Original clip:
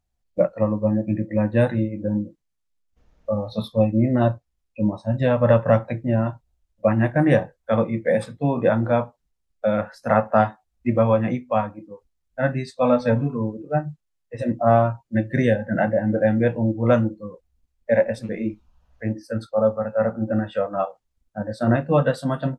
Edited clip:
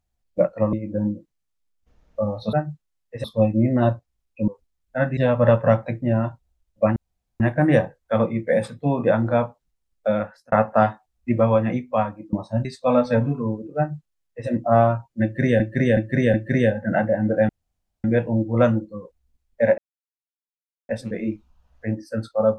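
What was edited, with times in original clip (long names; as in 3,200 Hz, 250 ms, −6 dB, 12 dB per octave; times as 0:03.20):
0:00.73–0:01.83: remove
0:04.87–0:05.19: swap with 0:11.91–0:12.60
0:06.98: splice in room tone 0.44 s
0:09.70–0:10.10: fade out
0:13.72–0:14.43: duplicate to 0:03.63
0:15.18–0:15.55: repeat, 4 plays
0:16.33: splice in room tone 0.55 s
0:18.07: splice in silence 1.11 s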